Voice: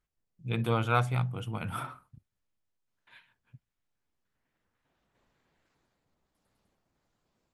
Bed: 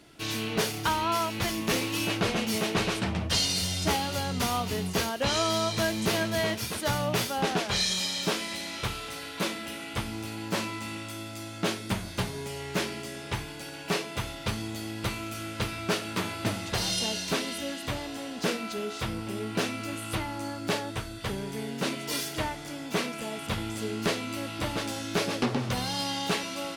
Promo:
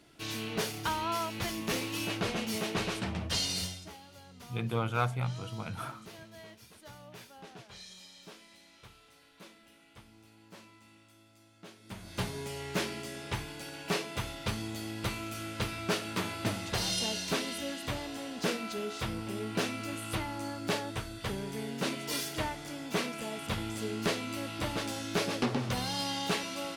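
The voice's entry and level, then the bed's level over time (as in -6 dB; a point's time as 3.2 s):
4.05 s, -3.5 dB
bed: 3.64 s -5.5 dB
3.9 s -22.5 dB
11.73 s -22.5 dB
12.23 s -3 dB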